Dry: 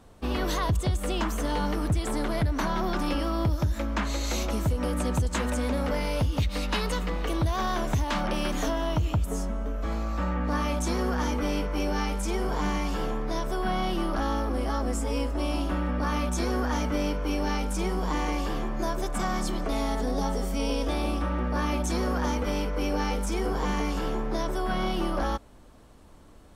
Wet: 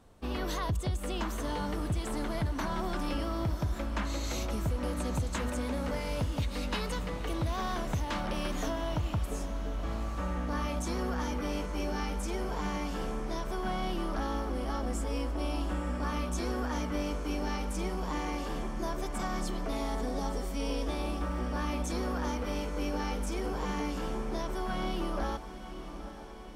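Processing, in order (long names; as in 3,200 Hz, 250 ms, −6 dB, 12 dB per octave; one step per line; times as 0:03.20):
feedback delay with all-pass diffusion 867 ms, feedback 64%, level −12 dB
level −6 dB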